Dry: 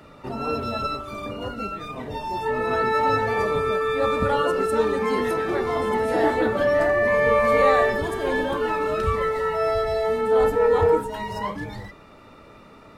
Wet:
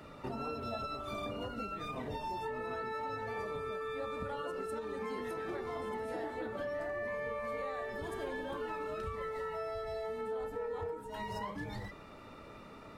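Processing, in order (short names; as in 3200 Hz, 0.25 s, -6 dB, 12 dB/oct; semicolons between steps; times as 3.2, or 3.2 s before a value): compressor 12:1, threshold -32 dBFS, peak gain reduction 19 dB; 0.66–1.37 small resonant body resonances 700/3500 Hz, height 10 dB; ending taper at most 110 dB/s; gain -4 dB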